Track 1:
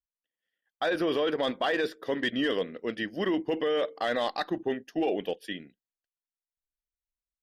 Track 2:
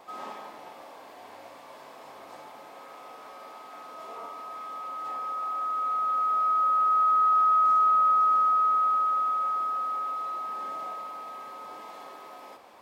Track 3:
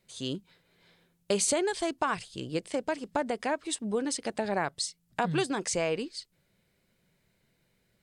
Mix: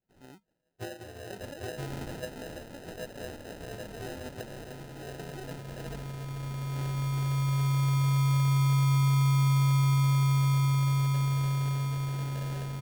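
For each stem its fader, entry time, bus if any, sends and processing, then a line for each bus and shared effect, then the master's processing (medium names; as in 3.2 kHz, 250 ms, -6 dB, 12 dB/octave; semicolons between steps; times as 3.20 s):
-7.0 dB, 0.00 s, no send, partials quantised in pitch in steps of 3 st; low-pass that closes with the level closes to 1.3 kHz, closed at -22.5 dBFS; band-pass filter 1.6 kHz, Q 1.1
-3.0 dB, 1.70 s, no send, peaking EQ 2.3 kHz +8.5 dB 2.2 oct; compression 2.5:1, threshold -21 dBFS, peak gain reduction 4.5 dB
-17.5 dB, 0.00 s, no send, none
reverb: none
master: sample-and-hold 39×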